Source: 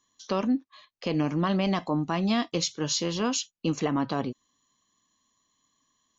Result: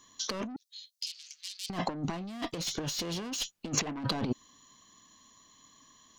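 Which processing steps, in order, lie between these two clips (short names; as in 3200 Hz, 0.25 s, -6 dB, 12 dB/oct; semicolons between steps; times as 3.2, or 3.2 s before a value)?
soft clip -29 dBFS, distortion -8 dB; 0.56–1.7 inverse Chebyshev high-pass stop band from 720 Hz, stop band 80 dB; negative-ratio compressor -38 dBFS, ratio -0.5; 2.28–3.56 one-sided clip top -38.5 dBFS; gain +6 dB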